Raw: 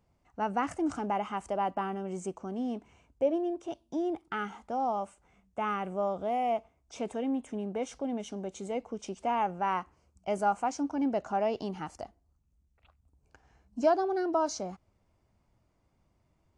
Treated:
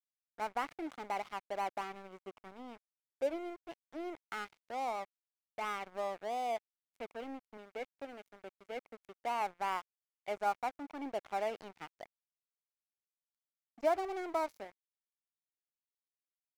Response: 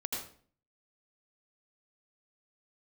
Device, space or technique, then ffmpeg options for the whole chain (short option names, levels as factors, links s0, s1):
pocket radio on a weak battery: -filter_complex "[0:a]asettb=1/sr,asplit=3[s0][s1][s2];[s0]atrim=end=7.574[s3];[s1]atrim=start=7.57:end=9.41,asetpts=PTS-STARTPTS,afade=t=in:d=0.004:c=qsin,afade=t=out:st=1.836:d=0.004:c=qsin,highpass=190[s4];[s2]atrim=start=9.406[s5];[s3][s4]acrossfade=d=0.004:c1=hsin:c2=qsin[s6];[s6][s5]acrossfade=d=0.004:c1=qsin:c2=hsin,highpass=370,lowpass=3200,aeval=exprs='sgn(val(0))*max(abs(val(0))-0.00794,0)':c=same,equalizer=f=2200:t=o:w=0.28:g=7,highshelf=f=5400:g=6,volume=0.596"